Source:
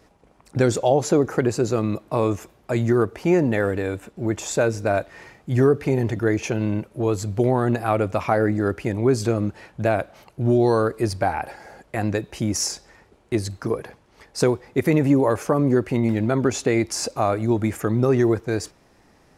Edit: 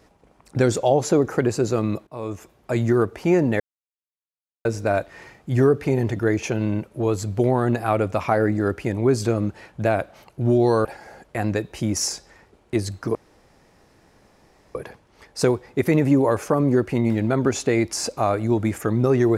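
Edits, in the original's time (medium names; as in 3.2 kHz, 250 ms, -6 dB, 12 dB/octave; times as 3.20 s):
2.07–2.73 s: fade in, from -19 dB
3.60–4.65 s: mute
10.85–11.44 s: delete
13.74 s: insert room tone 1.60 s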